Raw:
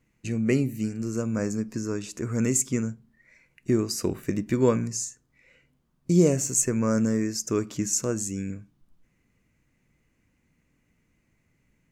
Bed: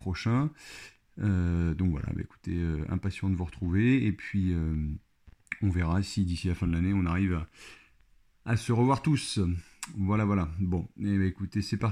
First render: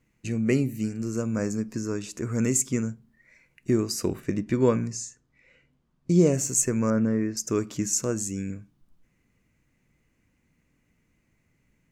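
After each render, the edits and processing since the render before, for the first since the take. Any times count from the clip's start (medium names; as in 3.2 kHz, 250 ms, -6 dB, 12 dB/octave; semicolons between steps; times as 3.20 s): 4.20–6.34 s: distance through air 53 m; 6.90–7.37 s: low-pass 2.3 kHz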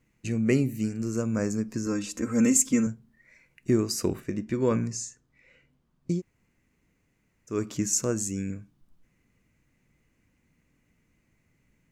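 1.86–2.87 s: comb 3.8 ms, depth 87%; 4.23–4.71 s: feedback comb 72 Hz, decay 0.16 s, harmonics odd, mix 50%; 6.14–7.54 s: room tone, crossfade 0.16 s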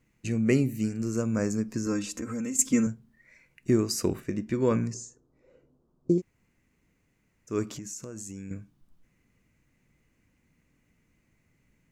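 2.07–2.59 s: compression, threshold -30 dBFS; 4.94–6.18 s: FFT filter 200 Hz 0 dB, 380 Hz +11 dB, 750 Hz +4 dB, 1.3 kHz -2 dB, 2.1 kHz -19 dB, 4 kHz -10 dB, 7 kHz -6 dB, 12 kHz -14 dB; 7.74–8.51 s: compression 8:1, threshold -36 dBFS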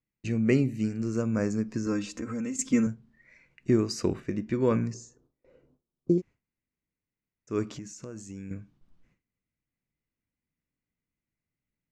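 gate with hold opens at -56 dBFS; low-pass 5.1 kHz 12 dB/octave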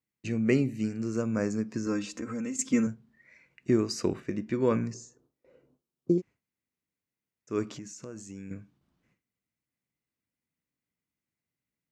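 high-pass 65 Hz; bass shelf 140 Hz -5.5 dB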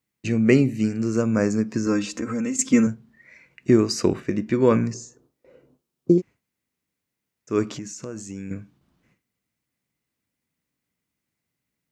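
trim +8 dB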